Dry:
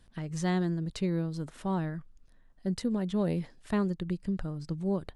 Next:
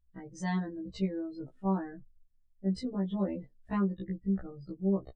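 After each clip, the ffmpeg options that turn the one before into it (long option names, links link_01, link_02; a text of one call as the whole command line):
ffmpeg -i in.wav -af "afftdn=noise_reduction=31:noise_floor=-42,afftfilt=real='re*1.73*eq(mod(b,3),0)':imag='im*1.73*eq(mod(b,3),0)':win_size=2048:overlap=0.75" out.wav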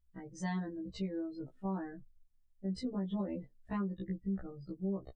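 ffmpeg -i in.wav -af "alimiter=level_in=2dB:limit=-24dB:level=0:latency=1:release=110,volume=-2dB,volume=-2dB" out.wav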